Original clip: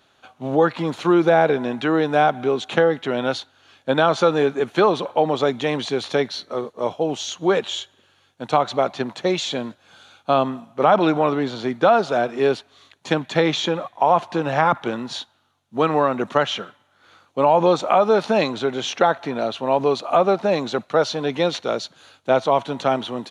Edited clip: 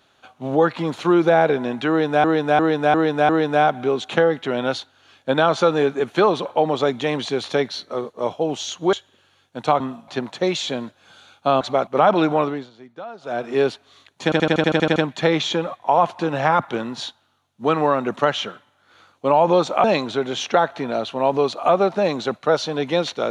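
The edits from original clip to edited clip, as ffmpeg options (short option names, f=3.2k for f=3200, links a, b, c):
-filter_complex "[0:a]asplit=22[a][b][c][d][e][f][g][h][i][j][k][l][m][n][o][p][q][r][s][t][u][v];[a]atrim=end=2.242[w];[b]atrim=start=1.888:end=2.242[x];[c]atrim=start=1.888:end=2.242[y];[d]atrim=start=1.888:end=2.242[z];[e]atrim=start=1.888:end=7.532[aa];[f]atrim=start=7.778:end=8.652[ab];[g]atrim=start=10.438:end=10.722[ac];[h]atrim=start=8.908:end=10.442[ad];[i]atrim=start=8.648:end=8.912[ae];[j]atrim=start=10.718:end=11.55,asetpts=PTS-STARTPTS,afade=t=out:st=0.532:d=0.3:silence=0.105925[af];[k]atrim=start=11.55:end=12.05,asetpts=PTS-STARTPTS,volume=-19.5dB[ag];[l]atrim=start=12.05:end=13.172,asetpts=PTS-STARTPTS,afade=t=in:d=0.3:silence=0.105925[ah];[m]atrim=start=13.088:end=13.172[ai];[n]atrim=start=13.088:end=13.172[aj];[o]atrim=start=13.088:end=13.172[ak];[p]atrim=start=13.088:end=13.172[al];[q]atrim=start=13.088:end=13.172[am];[r]atrim=start=13.088:end=13.172[an];[s]atrim=start=13.088:end=13.172[ao];[t]atrim=start=13.088:end=13.172[ap];[u]atrim=start=13.088:end=17.972[aq];[v]atrim=start=18.308[ar];[w][x]acrossfade=d=0.004:c1=hsin:c2=hsin[as];[as][y]acrossfade=d=0.004:c1=hsin:c2=hsin[at];[at][z]acrossfade=d=0.004:c1=hsin:c2=hsin[au];[au][aa]acrossfade=d=0.004:c1=hsin:c2=hsin[av];[av][ab]acrossfade=d=0.004:c1=hsin:c2=hsin[aw];[aw][ac]acrossfade=d=0.004:c1=hsin:c2=hsin[ax];[ax][ad]acrossfade=d=0.004:c1=hsin:c2=hsin[ay];[ay][ae]acrossfade=d=0.004:c1=hsin:c2=hsin[az];[af][ag][ah]concat=n=3:v=0:a=1[ba];[az][ba]acrossfade=d=0.004:c1=hsin:c2=hsin[bb];[bb][ai]acrossfade=d=0.004:c1=hsin:c2=hsin[bc];[bc][aj]acrossfade=d=0.004:c1=hsin:c2=hsin[bd];[bd][ak]acrossfade=d=0.004:c1=hsin:c2=hsin[be];[be][al]acrossfade=d=0.004:c1=hsin:c2=hsin[bf];[bf][am]acrossfade=d=0.004:c1=hsin:c2=hsin[bg];[bg][an]acrossfade=d=0.004:c1=hsin:c2=hsin[bh];[bh][ao]acrossfade=d=0.004:c1=hsin:c2=hsin[bi];[bi][ap]acrossfade=d=0.004:c1=hsin:c2=hsin[bj];[bj][aq]acrossfade=d=0.004:c1=hsin:c2=hsin[bk];[bk][ar]acrossfade=d=0.004:c1=hsin:c2=hsin"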